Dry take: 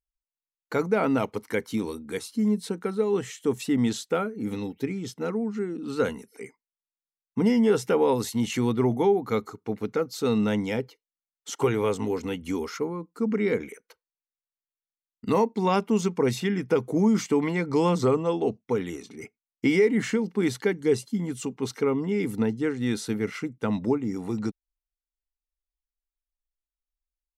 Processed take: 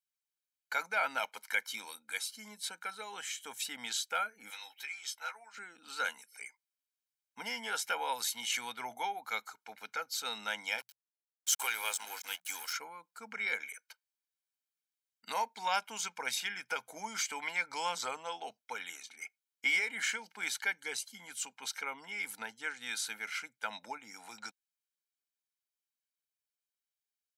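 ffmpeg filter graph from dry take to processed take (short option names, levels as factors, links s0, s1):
-filter_complex "[0:a]asettb=1/sr,asplit=3[s0][s1][s2];[s0]atrim=end=4.504[s3];[s1]atrim=start=4.5:end=5.58,asetpts=PTS-STARTPTS,afade=t=in:d=0.004:c=qsin,afade=t=out:st=1.076:d=0.004:c=qsin,highpass=840,asplit=2[s4][s5];[s5]adelay=14,volume=0.501[s6];[s4][s6]amix=inputs=2:normalize=0,atrim=end_sample=47628,acompressor=mode=upward:threshold=0.00447:ratio=2.5:attack=3.2:release=140:knee=2.83:detection=peak[s7];[s2]atrim=start=5.576[s8];[s3][s7]acrossfade=d=0.004:c1=hsin:c2=qsin[s9];[s9][s8]acrossfade=d=0.004:c1=qsin:c2=hsin,asettb=1/sr,asplit=3[s10][s11][s12];[s10]atrim=end=10.784[s13];[s11]atrim=start=10.78:end=12.73,asetpts=PTS-STARTPTS,afade=t=in:d=0.004:c=qsin,afade=t=out:st=1.946:d=0.004:c=qsin,aemphasis=mode=production:type=bsi,aeval=exprs='sgn(val(0))*max(abs(val(0))-0.00841,0)':c=same,bandreject=f=60:t=h:w=6,bandreject=f=120:t=h:w=6,bandreject=f=180:t=h:w=6[s14];[s12]atrim=start=12.726[s15];[s13][s14]acrossfade=d=0.004:c1=hsin:c2=qsin[s16];[s16][s15]acrossfade=d=0.004:c1=qsin:c2=hsin,highpass=1400,aecho=1:1:1.3:0.69"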